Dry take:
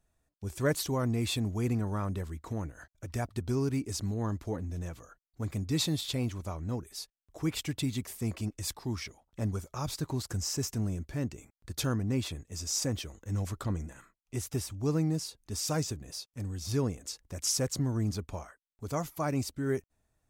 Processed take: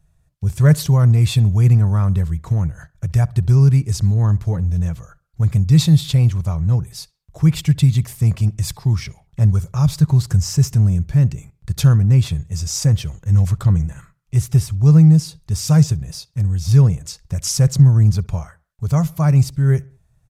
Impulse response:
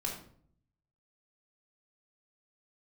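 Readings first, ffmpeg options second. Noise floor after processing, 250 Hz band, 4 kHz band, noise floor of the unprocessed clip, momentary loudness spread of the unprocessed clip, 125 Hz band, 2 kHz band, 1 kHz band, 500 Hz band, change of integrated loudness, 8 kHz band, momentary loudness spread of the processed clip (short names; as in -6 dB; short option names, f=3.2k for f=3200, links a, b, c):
-62 dBFS, +13.5 dB, +7.5 dB, -85 dBFS, 10 LU, +21.0 dB, n/a, +7.0 dB, +5.5 dB, +17.5 dB, +7.5 dB, 12 LU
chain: -filter_complex "[0:a]lowshelf=f=200:t=q:w=3:g=9,aresample=32000,aresample=44100,asplit=2[a][b];[b]adelay=66,lowpass=f=3.2k:p=1,volume=-23.5dB,asplit=2[c][d];[d]adelay=66,lowpass=f=3.2k:p=1,volume=0.47,asplit=2[e][f];[f]adelay=66,lowpass=f=3.2k:p=1,volume=0.47[g];[a][c][e][g]amix=inputs=4:normalize=0,volume=7.5dB"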